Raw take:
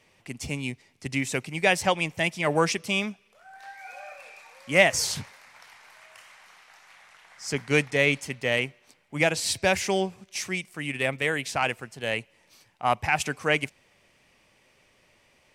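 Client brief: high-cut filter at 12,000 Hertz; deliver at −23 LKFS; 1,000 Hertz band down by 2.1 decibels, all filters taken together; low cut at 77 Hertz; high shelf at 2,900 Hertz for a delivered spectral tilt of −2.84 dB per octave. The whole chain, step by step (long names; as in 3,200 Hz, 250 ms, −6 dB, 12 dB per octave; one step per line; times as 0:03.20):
high-pass filter 77 Hz
low-pass filter 12,000 Hz
parametric band 1,000 Hz −3.5 dB
high-shelf EQ 2,900 Hz +3.5 dB
level +2.5 dB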